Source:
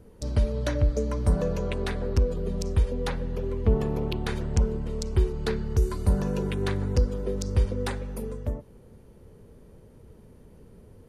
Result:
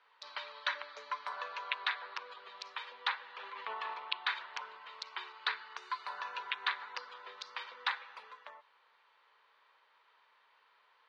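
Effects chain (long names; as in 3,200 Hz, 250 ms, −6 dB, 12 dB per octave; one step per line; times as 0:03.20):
Chebyshev band-pass filter 1,000–4,000 Hz, order 3
0:03.22–0:03.94: level that may fall only so fast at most 31 dB per second
level +4 dB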